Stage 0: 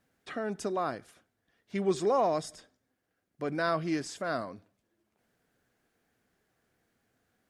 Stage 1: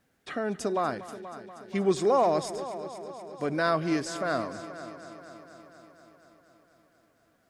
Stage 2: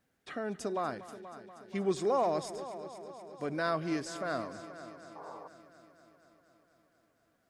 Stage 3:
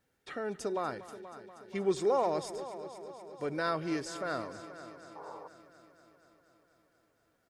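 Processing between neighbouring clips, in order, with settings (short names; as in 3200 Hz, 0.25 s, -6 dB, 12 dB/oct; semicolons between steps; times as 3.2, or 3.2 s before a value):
multi-head echo 0.24 s, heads first and second, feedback 62%, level -16.5 dB; gain +3.5 dB
painted sound noise, 5.15–5.48, 400–1200 Hz -41 dBFS; gain -6 dB
comb 2.2 ms, depth 32%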